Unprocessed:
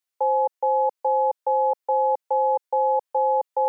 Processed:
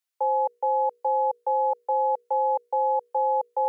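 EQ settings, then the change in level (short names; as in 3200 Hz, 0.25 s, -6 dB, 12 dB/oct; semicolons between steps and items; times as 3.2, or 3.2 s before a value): low shelf 450 Hz -8.5 dB; notches 60/120/180/240/300/360/420/480 Hz; 0.0 dB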